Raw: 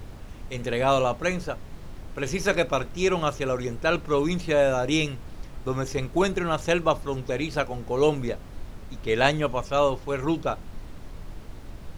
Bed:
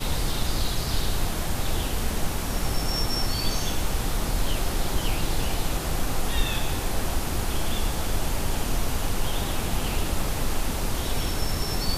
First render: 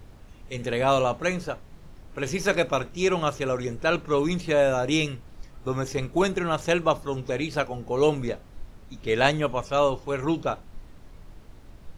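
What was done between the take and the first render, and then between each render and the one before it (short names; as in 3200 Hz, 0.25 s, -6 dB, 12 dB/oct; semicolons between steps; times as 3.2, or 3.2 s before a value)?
noise print and reduce 7 dB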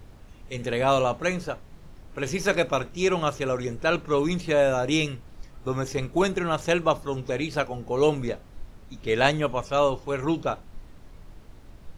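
nothing audible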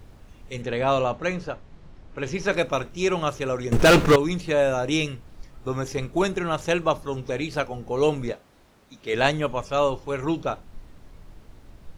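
0.62–2.52 air absorption 79 m; 3.72–4.16 sample leveller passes 5; 8.32–9.14 HPF 370 Hz 6 dB/oct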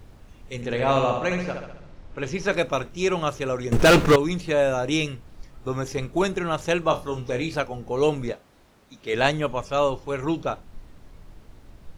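0.56–2.25 flutter echo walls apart 11.4 m, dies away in 0.8 s; 6.87–7.56 flutter echo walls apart 4.2 m, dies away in 0.22 s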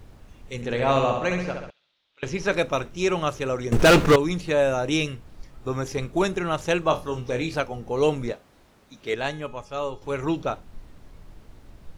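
1.7–2.23 band-pass 3600 Hz, Q 4.4; 9.14–10.02 resonator 420 Hz, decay 0.47 s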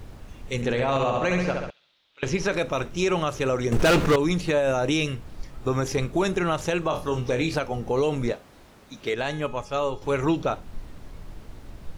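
in parallel at -1 dB: compressor, threshold -28 dBFS, peak gain reduction 14.5 dB; on the sum: limiter -14.5 dBFS, peak gain reduction 8.5 dB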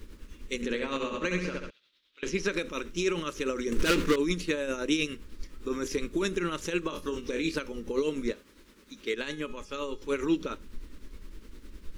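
fixed phaser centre 300 Hz, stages 4; tremolo triangle 9.8 Hz, depth 60%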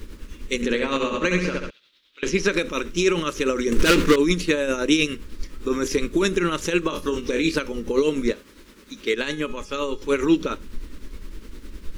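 gain +8.5 dB; limiter -3 dBFS, peak gain reduction 1 dB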